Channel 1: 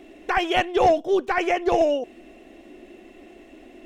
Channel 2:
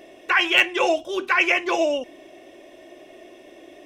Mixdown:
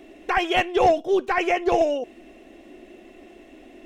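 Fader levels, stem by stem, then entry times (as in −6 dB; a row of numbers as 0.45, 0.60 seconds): −0.5, −13.5 decibels; 0.00, 0.00 seconds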